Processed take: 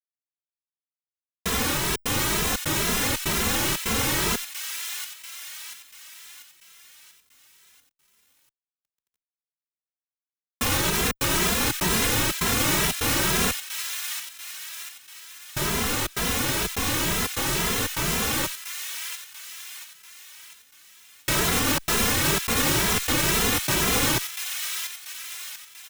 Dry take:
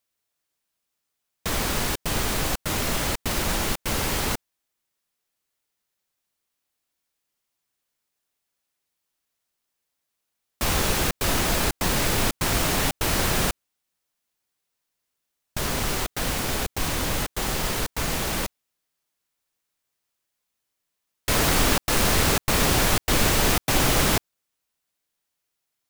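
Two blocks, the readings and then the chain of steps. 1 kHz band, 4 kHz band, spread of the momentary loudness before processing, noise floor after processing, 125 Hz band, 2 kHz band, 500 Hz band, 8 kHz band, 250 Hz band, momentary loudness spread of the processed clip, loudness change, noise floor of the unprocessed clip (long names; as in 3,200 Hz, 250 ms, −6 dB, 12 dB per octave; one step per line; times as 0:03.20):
−1.0 dB, +1.5 dB, 8 LU, below −85 dBFS, −2.0 dB, +1.5 dB, −1.5 dB, +2.0 dB, 0.0 dB, 16 LU, 0.0 dB, −81 dBFS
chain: brickwall limiter −13.5 dBFS, peak gain reduction 6 dB
low-shelf EQ 61 Hz −11 dB
delay with a high-pass on its return 689 ms, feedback 49%, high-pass 2,000 Hz, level −6 dB
bit reduction 10 bits
parametric band 670 Hz −6 dB 0.66 octaves
notch filter 4,600 Hz, Q 14
barber-pole flanger 2.6 ms +2.1 Hz
level +5.5 dB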